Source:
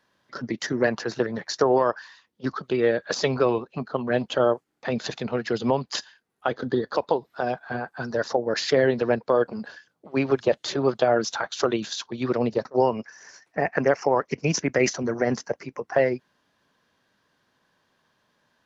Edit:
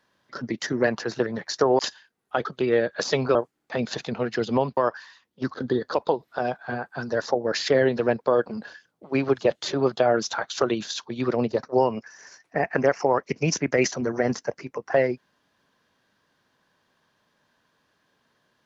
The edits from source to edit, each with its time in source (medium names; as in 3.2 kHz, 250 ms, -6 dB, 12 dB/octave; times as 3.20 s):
1.79–2.56 s: swap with 5.90–6.56 s
3.46–4.48 s: delete